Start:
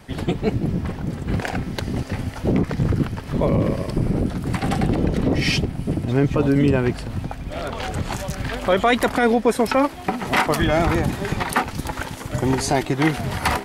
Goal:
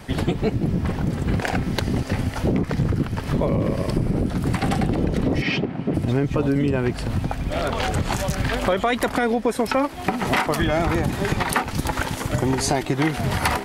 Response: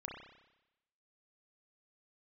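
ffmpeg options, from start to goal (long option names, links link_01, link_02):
-filter_complex "[0:a]asplit=3[link_01][link_02][link_03];[link_01]afade=type=out:start_time=5.41:duration=0.02[link_04];[link_02]highpass=200,lowpass=2500,afade=type=in:start_time=5.41:duration=0.02,afade=type=out:start_time=5.93:duration=0.02[link_05];[link_03]afade=type=in:start_time=5.93:duration=0.02[link_06];[link_04][link_05][link_06]amix=inputs=3:normalize=0,acompressor=threshold=-24dB:ratio=4,volume=5.5dB"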